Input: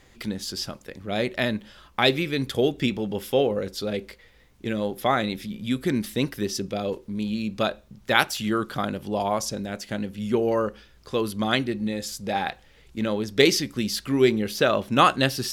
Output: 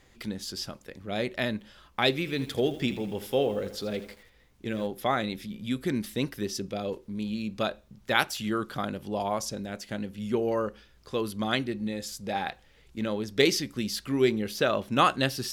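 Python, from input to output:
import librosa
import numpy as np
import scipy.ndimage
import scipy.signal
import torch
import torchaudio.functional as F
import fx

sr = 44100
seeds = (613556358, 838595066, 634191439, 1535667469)

y = fx.echo_crushed(x, sr, ms=81, feedback_pct=55, bits=7, wet_db=-13.0, at=(2.11, 4.87))
y = y * 10.0 ** (-4.5 / 20.0)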